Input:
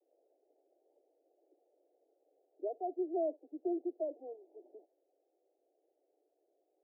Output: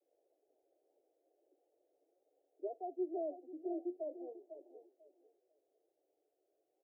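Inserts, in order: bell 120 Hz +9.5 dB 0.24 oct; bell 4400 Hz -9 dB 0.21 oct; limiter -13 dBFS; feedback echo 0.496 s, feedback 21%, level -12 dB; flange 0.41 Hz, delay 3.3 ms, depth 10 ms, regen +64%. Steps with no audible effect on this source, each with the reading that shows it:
bell 120 Hz: input band starts at 250 Hz; bell 4400 Hz: input band ends at 760 Hz; limiter -13 dBFS: input peak -26.0 dBFS

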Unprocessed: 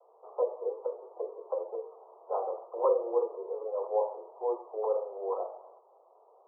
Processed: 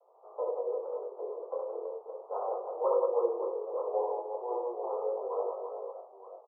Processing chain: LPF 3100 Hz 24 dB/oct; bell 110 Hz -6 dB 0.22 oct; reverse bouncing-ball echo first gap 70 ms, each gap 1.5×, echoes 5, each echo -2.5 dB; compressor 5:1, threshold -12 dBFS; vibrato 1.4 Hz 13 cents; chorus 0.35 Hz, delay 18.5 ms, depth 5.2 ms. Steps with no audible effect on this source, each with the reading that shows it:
LPF 3100 Hz: input band ends at 1300 Hz; bell 110 Hz: input band starts at 340 Hz; compressor, threshold -12 dBFS: input peak -14.0 dBFS

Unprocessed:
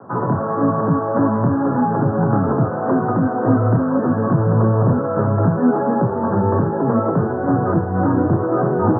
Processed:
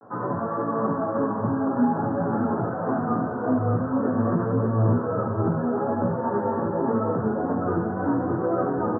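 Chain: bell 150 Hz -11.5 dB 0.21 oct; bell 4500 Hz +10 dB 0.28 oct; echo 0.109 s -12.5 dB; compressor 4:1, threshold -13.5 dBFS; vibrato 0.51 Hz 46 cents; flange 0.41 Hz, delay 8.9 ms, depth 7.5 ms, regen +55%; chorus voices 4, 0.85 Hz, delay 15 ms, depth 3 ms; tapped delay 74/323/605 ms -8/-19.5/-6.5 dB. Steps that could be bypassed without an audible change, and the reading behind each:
bell 4500 Hz: input band ends at 1400 Hz

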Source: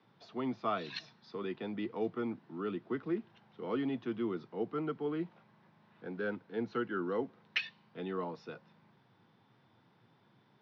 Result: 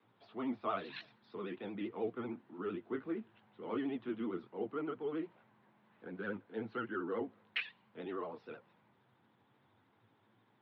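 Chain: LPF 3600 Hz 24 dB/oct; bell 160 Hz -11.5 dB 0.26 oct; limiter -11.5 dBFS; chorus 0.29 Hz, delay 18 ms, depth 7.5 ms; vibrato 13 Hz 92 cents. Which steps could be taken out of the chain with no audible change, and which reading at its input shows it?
limiter -11.5 dBFS: input peak -19.0 dBFS

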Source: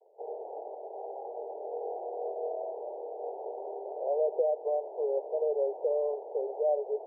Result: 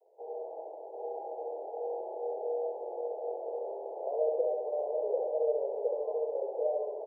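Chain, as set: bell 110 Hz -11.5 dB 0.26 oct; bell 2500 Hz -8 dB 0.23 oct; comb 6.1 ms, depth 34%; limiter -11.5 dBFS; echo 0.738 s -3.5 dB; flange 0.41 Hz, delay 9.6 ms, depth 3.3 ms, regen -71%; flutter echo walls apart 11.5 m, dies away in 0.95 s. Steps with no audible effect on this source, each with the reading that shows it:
bell 110 Hz: input band starts at 300 Hz; bell 2500 Hz: input band ends at 960 Hz; limiter -11.5 dBFS: input peak -16.5 dBFS

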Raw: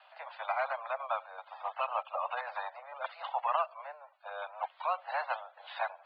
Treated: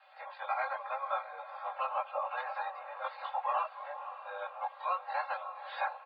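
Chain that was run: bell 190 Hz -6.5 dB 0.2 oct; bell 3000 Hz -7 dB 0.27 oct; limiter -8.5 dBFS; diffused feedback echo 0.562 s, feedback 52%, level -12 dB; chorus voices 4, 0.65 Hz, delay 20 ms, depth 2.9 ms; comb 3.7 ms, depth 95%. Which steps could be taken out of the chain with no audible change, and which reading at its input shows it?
bell 190 Hz: input band starts at 450 Hz; limiter -8.5 dBFS: input peak -18.5 dBFS

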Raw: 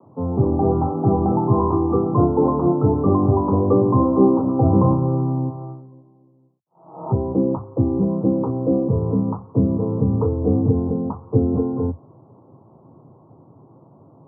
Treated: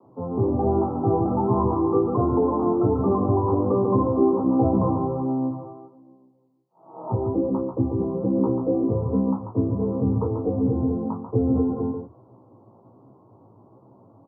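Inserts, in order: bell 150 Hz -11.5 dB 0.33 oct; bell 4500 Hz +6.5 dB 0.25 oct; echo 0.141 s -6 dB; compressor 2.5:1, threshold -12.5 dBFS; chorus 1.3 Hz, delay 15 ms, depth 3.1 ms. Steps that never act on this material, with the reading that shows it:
bell 4500 Hz: input band ends at 1200 Hz

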